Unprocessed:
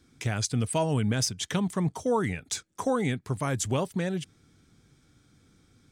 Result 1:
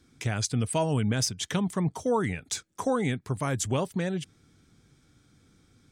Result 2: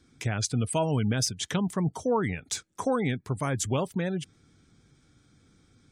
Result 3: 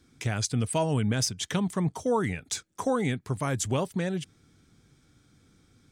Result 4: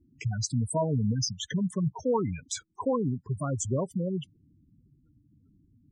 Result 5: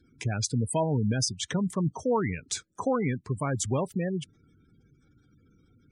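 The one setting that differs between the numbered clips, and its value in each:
spectral gate, under each frame's peak: -50, -35, -60, -10, -20 dB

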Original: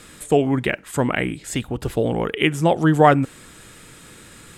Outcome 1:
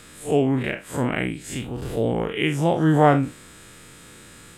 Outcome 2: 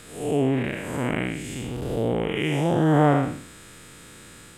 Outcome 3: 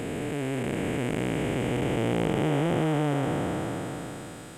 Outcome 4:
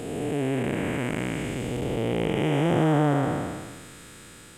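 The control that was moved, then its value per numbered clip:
time blur, width: 93, 239, 1610, 656 ms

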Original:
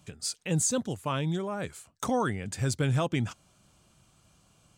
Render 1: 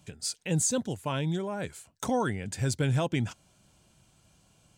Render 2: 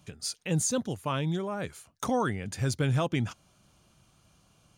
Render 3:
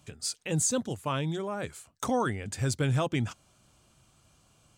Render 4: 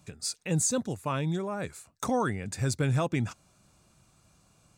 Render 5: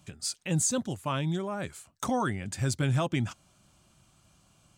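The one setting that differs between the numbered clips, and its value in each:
notch, frequency: 1200, 7800, 180, 3100, 460 Hz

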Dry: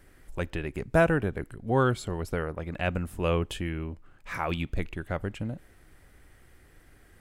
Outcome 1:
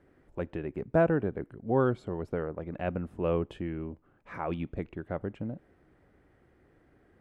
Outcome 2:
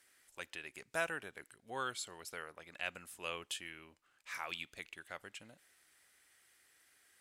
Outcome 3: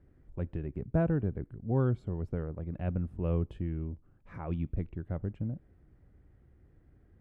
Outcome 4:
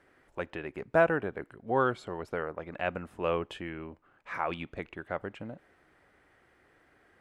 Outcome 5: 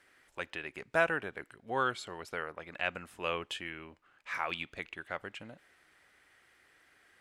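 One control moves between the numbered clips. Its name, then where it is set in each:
band-pass, frequency: 350, 7200, 110, 910, 2500 Hz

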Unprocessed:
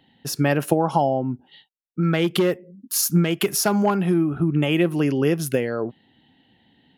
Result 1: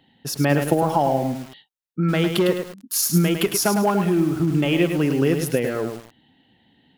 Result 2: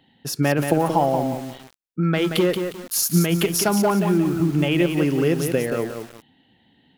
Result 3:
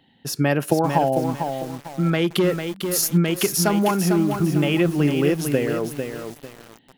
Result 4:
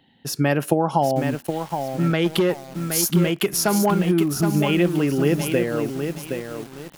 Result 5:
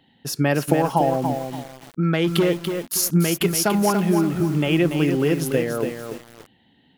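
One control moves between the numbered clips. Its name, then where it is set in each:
lo-fi delay, time: 0.105, 0.179, 0.449, 0.77, 0.287 s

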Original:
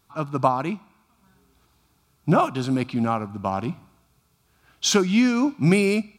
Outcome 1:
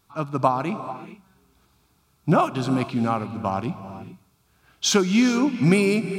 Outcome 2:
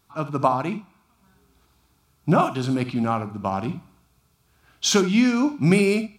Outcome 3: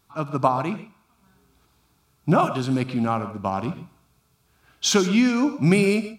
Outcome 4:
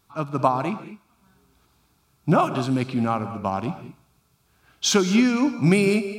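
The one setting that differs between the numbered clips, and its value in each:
non-linear reverb, gate: 460, 90, 160, 240 ms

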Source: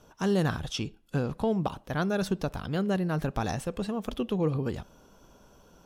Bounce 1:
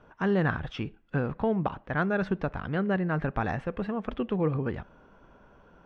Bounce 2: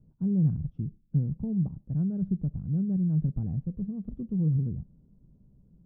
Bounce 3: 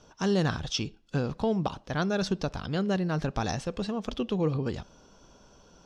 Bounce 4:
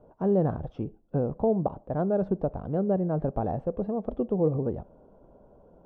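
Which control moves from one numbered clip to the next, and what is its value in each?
synth low-pass, frequency: 1900, 160, 5500, 630 Hz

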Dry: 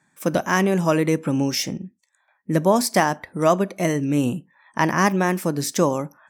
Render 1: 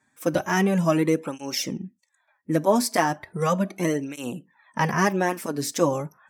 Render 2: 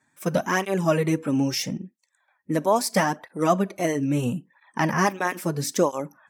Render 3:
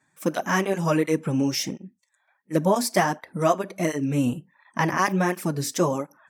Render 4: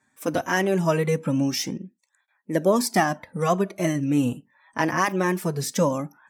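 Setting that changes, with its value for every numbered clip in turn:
tape flanging out of phase, nulls at: 0.36, 0.76, 1.4, 0.22 Hz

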